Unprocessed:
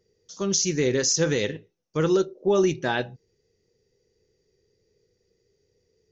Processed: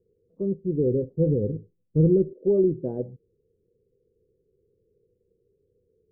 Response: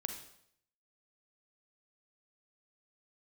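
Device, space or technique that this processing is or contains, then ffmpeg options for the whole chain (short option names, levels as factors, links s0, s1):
under water: -filter_complex "[0:a]lowpass=f=440:w=0.5412,lowpass=f=440:w=1.3066,equalizer=f=510:t=o:w=0.44:g=7.5,asettb=1/sr,asplit=3[s0][s1][s2];[s0]atrim=end=0.664[s3];[s1]atrim=start=0.66:end=2.33,asetpts=PTS-STARTPTS,afade=t=in:d=0.004:c=qsin,afade=t=out:st=1.666:d=0.004:c=qsin,asubboost=boost=8.5:cutoff=220[s4];[s2]atrim=start=2.326[s5];[s3][s4]acrossfade=d=0.004:c1=hsin:c2=qsin[s6];[s6][s5]acrossfade=d=0.004:c1=qsin:c2=hsin"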